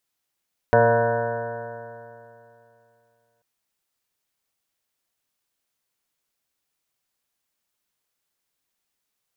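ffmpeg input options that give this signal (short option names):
-f lavfi -i "aevalsrc='0.0794*pow(10,-3*t/2.78)*sin(2*PI*115.07*t)+0.0422*pow(10,-3*t/2.78)*sin(2*PI*230.55*t)+0.0158*pow(10,-3*t/2.78)*sin(2*PI*346.86*t)+0.141*pow(10,-3*t/2.78)*sin(2*PI*464.4*t)+0.15*pow(10,-3*t/2.78)*sin(2*PI*583.56*t)+0.112*pow(10,-3*t/2.78)*sin(2*PI*704.75*t)+0.0112*pow(10,-3*t/2.78)*sin(2*PI*828.33*t)+0.0794*pow(10,-3*t/2.78)*sin(2*PI*954.67*t)+0.0168*pow(10,-3*t/2.78)*sin(2*PI*1084.13*t)+0.00841*pow(10,-3*t/2.78)*sin(2*PI*1217.05*t)+0.0126*pow(10,-3*t/2.78)*sin(2*PI*1353.73*t)+0.0631*pow(10,-3*t/2.78)*sin(2*PI*1494.48*t)+0.0237*pow(10,-3*t/2.78)*sin(2*PI*1639.6*t)+0.0211*pow(10,-3*t/2.78)*sin(2*PI*1789.35*t)':d=2.69:s=44100"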